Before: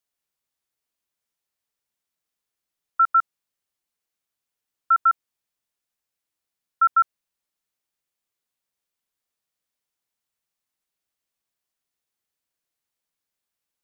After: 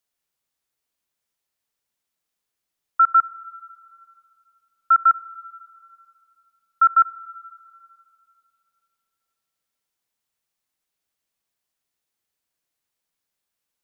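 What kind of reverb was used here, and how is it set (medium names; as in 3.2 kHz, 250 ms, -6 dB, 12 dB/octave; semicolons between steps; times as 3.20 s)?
Schroeder reverb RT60 2.5 s, combs from 32 ms, DRR 18 dB; trim +2.5 dB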